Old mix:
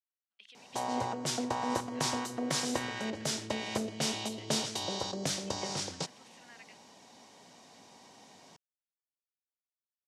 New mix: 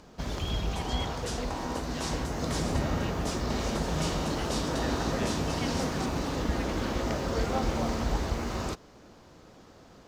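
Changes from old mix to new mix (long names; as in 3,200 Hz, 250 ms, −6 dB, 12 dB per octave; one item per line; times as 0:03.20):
speech +9.0 dB
first sound: unmuted
second sound −5.0 dB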